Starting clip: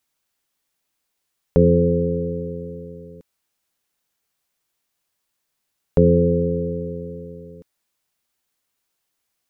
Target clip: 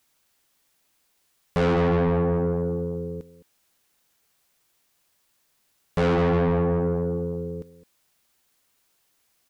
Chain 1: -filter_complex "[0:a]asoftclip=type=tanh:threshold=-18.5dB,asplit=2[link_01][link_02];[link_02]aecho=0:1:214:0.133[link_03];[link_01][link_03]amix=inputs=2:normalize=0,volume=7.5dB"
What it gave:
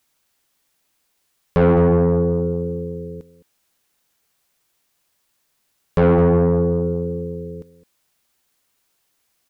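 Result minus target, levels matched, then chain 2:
soft clipping: distortion −4 dB
-filter_complex "[0:a]asoftclip=type=tanh:threshold=-27dB,asplit=2[link_01][link_02];[link_02]aecho=0:1:214:0.133[link_03];[link_01][link_03]amix=inputs=2:normalize=0,volume=7.5dB"

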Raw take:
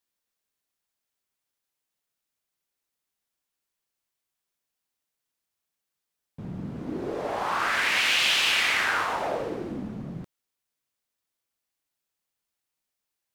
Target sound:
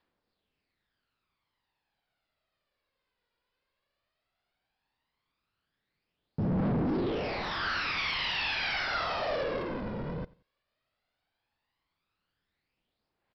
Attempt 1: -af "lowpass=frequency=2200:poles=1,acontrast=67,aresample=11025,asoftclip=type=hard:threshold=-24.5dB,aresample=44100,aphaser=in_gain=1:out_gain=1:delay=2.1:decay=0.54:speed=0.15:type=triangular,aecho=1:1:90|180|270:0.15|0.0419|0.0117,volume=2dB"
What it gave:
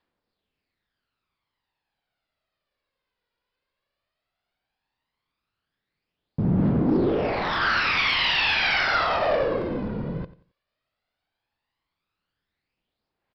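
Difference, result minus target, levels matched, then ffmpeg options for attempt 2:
echo-to-direct +6 dB; hard clipping: distortion −4 dB
-af "lowpass=frequency=2200:poles=1,acontrast=67,aresample=11025,asoftclip=type=hard:threshold=-35dB,aresample=44100,aphaser=in_gain=1:out_gain=1:delay=2.1:decay=0.54:speed=0.15:type=triangular,aecho=1:1:90|180:0.075|0.021,volume=2dB"

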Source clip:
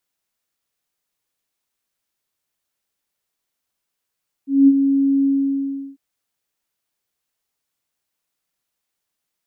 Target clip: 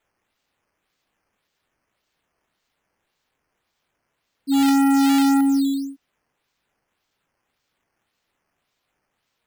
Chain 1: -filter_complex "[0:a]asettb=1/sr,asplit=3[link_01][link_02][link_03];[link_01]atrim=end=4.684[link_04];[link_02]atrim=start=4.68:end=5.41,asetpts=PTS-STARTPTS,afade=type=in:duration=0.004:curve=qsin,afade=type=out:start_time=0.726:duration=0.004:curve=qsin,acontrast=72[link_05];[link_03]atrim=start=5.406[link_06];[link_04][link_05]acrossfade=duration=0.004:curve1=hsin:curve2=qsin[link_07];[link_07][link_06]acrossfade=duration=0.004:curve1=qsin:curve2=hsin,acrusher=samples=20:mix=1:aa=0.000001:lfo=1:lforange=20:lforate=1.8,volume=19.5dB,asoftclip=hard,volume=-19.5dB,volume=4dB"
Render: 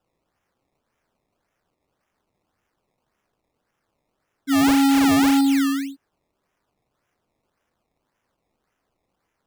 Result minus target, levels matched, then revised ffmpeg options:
sample-and-hold swept by an LFO: distortion +9 dB
-filter_complex "[0:a]asettb=1/sr,asplit=3[link_01][link_02][link_03];[link_01]atrim=end=4.684[link_04];[link_02]atrim=start=4.68:end=5.41,asetpts=PTS-STARTPTS,afade=type=in:duration=0.004:curve=qsin,afade=type=out:start_time=0.726:duration=0.004:curve=qsin,acontrast=72[link_05];[link_03]atrim=start=5.406[link_06];[link_04][link_05]acrossfade=duration=0.004:curve1=hsin:curve2=qsin[link_07];[link_07][link_06]acrossfade=duration=0.004:curve1=qsin:curve2=hsin,acrusher=samples=8:mix=1:aa=0.000001:lfo=1:lforange=8:lforate=1.8,volume=19.5dB,asoftclip=hard,volume=-19.5dB,volume=4dB"

